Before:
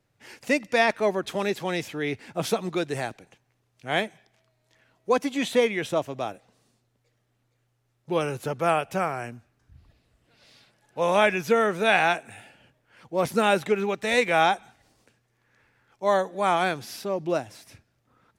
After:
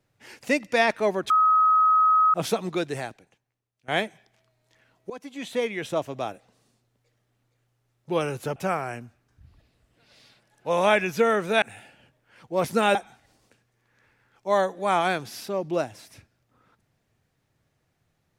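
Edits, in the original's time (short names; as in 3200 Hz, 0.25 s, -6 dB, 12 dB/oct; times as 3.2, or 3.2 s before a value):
1.3–2.34 bleep 1270 Hz -15.5 dBFS
2.86–3.88 fade out quadratic, to -17.5 dB
5.1–6.12 fade in, from -20 dB
8.56–8.87 cut
11.93–12.23 cut
13.56–14.51 cut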